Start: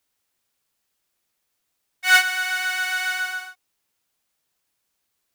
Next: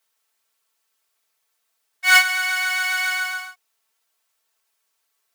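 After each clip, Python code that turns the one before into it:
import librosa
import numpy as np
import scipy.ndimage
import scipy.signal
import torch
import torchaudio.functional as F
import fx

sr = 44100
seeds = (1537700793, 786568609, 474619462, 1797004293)

y = scipy.signal.sosfilt(scipy.signal.butter(2, 460.0, 'highpass', fs=sr, output='sos'), x)
y = fx.peak_eq(y, sr, hz=1200.0, db=2.5, octaves=0.77)
y = y + 0.91 * np.pad(y, (int(4.5 * sr / 1000.0), 0))[:len(y)]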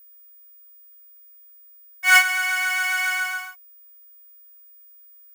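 y = fx.peak_eq(x, sr, hz=4000.0, db=-11.5, octaves=0.37)
y = y + 10.0 ** (-47.0 / 20.0) * np.sin(2.0 * np.pi * 15000.0 * np.arange(len(y)) / sr)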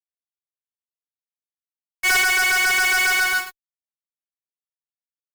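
y = fx.fuzz(x, sr, gain_db=41.0, gate_db=-36.0)
y = fx.upward_expand(y, sr, threshold_db=-30.0, expansion=2.5)
y = F.gain(torch.from_numpy(y), -3.0).numpy()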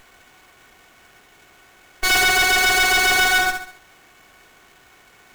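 y = fx.bin_compress(x, sr, power=0.4)
y = fx.echo_feedback(y, sr, ms=69, feedback_pct=42, wet_db=-6.5)
y = fx.running_max(y, sr, window=9)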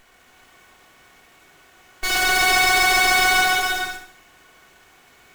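y = fx.rev_gated(x, sr, seeds[0], gate_ms=490, shape='flat', drr_db=-2.0)
y = F.gain(torch.from_numpy(y), -5.0).numpy()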